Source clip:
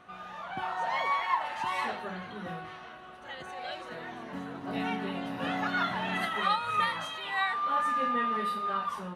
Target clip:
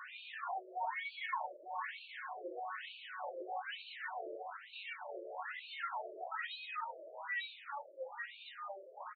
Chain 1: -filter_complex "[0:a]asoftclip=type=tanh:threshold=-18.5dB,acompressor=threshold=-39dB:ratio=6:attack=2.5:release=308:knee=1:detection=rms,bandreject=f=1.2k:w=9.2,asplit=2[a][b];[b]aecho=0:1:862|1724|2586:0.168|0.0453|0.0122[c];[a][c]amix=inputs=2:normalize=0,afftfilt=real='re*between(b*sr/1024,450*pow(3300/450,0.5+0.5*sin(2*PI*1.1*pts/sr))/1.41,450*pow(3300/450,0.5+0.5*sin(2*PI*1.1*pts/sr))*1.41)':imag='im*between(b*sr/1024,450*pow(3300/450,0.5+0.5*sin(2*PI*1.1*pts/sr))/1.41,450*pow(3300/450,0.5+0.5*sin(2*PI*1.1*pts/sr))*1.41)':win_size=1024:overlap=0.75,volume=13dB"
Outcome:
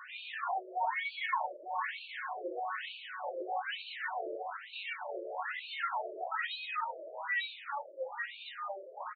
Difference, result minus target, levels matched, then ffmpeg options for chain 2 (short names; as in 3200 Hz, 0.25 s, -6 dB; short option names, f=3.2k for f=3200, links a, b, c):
compressor: peak gain reduction -6 dB
-filter_complex "[0:a]asoftclip=type=tanh:threshold=-18.5dB,acompressor=threshold=-46dB:ratio=6:attack=2.5:release=308:knee=1:detection=rms,bandreject=f=1.2k:w=9.2,asplit=2[a][b];[b]aecho=0:1:862|1724|2586:0.168|0.0453|0.0122[c];[a][c]amix=inputs=2:normalize=0,afftfilt=real='re*between(b*sr/1024,450*pow(3300/450,0.5+0.5*sin(2*PI*1.1*pts/sr))/1.41,450*pow(3300/450,0.5+0.5*sin(2*PI*1.1*pts/sr))*1.41)':imag='im*between(b*sr/1024,450*pow(3300/450,0.5+0.5*sin(2*PI*1.1*pts/sr))/1.41,450*pow(3300/450,0.5+0.5*sin(2*PI*1.1*pts/sr))*1.41)':win_size=1024:overlap=0.75,volume=13dB"